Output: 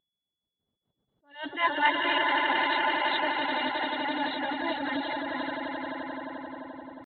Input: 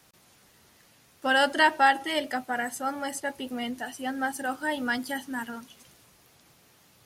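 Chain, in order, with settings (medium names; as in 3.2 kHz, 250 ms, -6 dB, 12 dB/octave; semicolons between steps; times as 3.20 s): knee-point frequency compression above 2.5 kHz 4:1; LFO notch sine 4.1 Hz 260–2500 Hz; on a send: echo with a slow build-up 87 ms, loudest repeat 8, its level -7 dB; on the sum: pitch shift +1.5 st; gate -52 dBFS, range -29 dB; whistle 3.4 kHz -50 dBFS; level-controlled noise filter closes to 530 Hz, open at -17.5 dBFS; reverb removal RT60 0.81 s; attacks held to a fixed rise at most 170 dB/s; trim -2 dB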